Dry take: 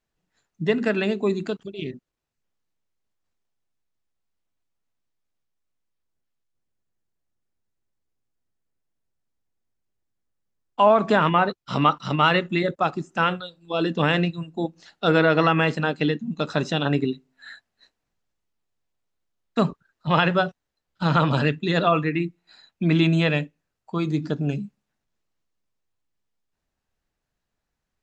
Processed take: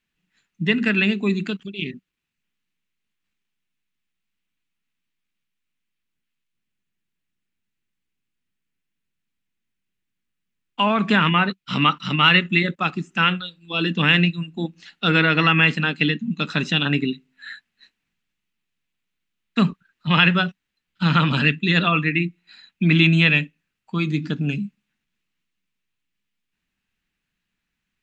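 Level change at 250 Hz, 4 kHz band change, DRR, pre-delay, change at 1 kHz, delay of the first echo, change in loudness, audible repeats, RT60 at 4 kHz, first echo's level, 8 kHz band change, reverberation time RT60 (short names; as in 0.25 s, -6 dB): +2.5 dB, +8.0 dB, none, none, -1.0 dB, none, +3.0 dB, none, none, none, n/a, none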